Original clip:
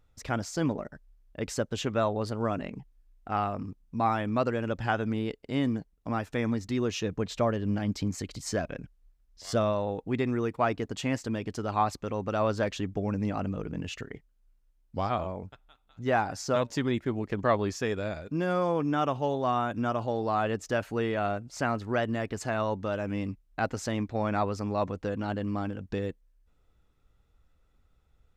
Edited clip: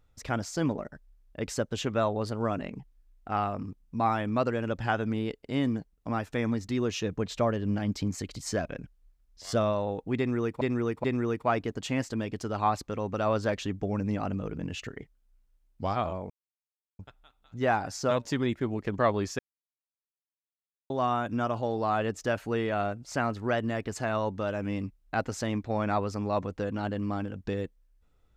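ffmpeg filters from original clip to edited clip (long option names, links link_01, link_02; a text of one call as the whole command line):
ffmpeg -i in.wav -filter_complex "[0:a]asplit=6[link_01][link_02][link_03][link_04][link_05][link_06];[link_01]atrim=end=10.612[link_07];[link_02]atrim=start=10.178:end=10.612[link_08];[link_03]atrim=start=10.178:end=15.44,asetpts=PTS-STARTPTS,afade=type=out:start_time=5.258:duration=0.004:curve=hsin,apad=pad_dur=0.69[link_09];[link_04]atrim=start=15.44:end=17.84,asetpts=PTS-STARTPTS,afade=type=in:duration=0.004:curve=hsin,afade=type=out:start_time=2.396:duration=0.004:curve=hsin[link_10];[link_05]atrim=start=17.84:end=19.35,asetpts=PTS-STARTPTS,volume=0[link_11];[link_06]atrim=start=19.35,asetpts=PTS-STARTPTS,afade=type=in:duration=0.004:curve=hsin[link_12];[link_07][link_08]acrossfade=duration=0.004:curve1=hsin:curve2=hsin[link_13];[link_09][link_10][link_11][link_12]concat=n=4:v=0:a=1[link_14];[link_13][link_14]acrossfade=duration=0.004:curve1=hsin:curve2=hsin" out.wav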